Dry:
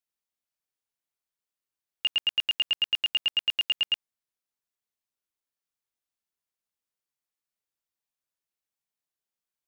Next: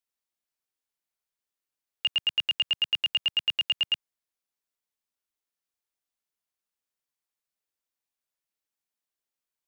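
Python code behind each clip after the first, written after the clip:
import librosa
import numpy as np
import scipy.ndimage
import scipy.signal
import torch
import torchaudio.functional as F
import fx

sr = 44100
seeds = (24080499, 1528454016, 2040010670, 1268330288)

y = fx.peak_eq(x, sr, hz=120.0, db=-6.0, octaves=1.0)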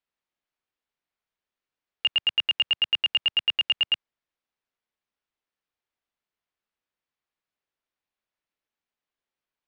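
y = scipy.signal.sosfilt(scipy.signal.butter(2, 3300.0, 'lowpass', fs=sr, output='sos'), x)
y = y * librosa.db_to_amplitude(4.5)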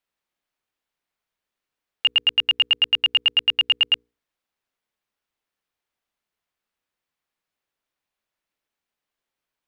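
y = fx.hum_notches(x, sr, base_hz=60, count=8)
y = y * librosa.db_to_amplitude(4.5)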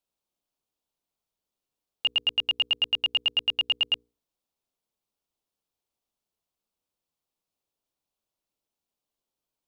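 y = fx.peak_eq(x, sr, hz=1800.0, db=-14.5, octaves=1.1)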